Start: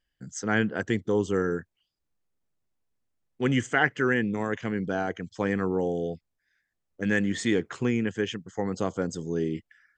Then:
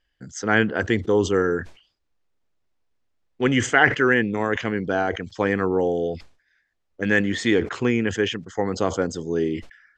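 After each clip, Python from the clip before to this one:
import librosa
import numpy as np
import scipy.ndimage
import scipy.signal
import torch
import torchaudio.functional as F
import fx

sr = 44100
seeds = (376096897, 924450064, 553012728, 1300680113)

y = scipy.signal.sosfilt(scipy.signal.butter(2, 5300.0, 'lowpass', fs=sr, output='sos'), x)
y = fx.peak_eq(y, sr, hz=160.0, db=-7.0, octaves=1.2)
y = fx.sustainer(y, sr, db_per_s=140.0)
y = F.gain(torch.from_numpy(y), 7.0).numpy()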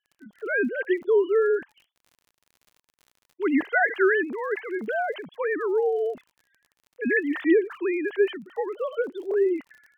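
y = fx.sine_speech(x, sr)
y = fx.env_lowpass_down(y, sr, base_hz=2700.0, full_db=-17.5)
y = fx.dmg_crackle(y, sr, seeds[0], per_s=45.0, level_db=-41.0)
y = F.gain(torch.from_numpy(y), -2.5).numpy()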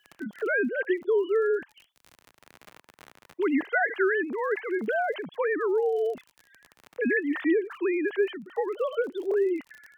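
y = fx.band_squash(x, sr, depth_pct=70)
y = F.gain(torch.from_numpy(y), -2.0).numpy()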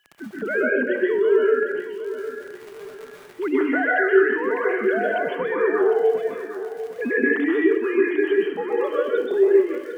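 y = fx.echo_feedback(x, sr, ms=754, feedback_pct=35, wet_db=-12.0)
y = fx.rev_plate(y, sr, seeds[1], rt60_s=0.62, hf_ratio=0.85, predelay_ms=115, drr_db=-4.0)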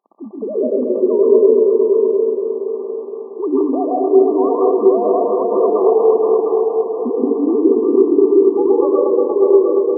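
y = fx.brickwall_bandpass(x, sr, low_hz=200.0, high_hz=1200.0)
y = fx.echo_heads(y, sr, ms=235, heads='all three', feedback_pct=45, wet_db=-7.5)
y = F.gain(torch.from_numpy(y), 5.0).numpy()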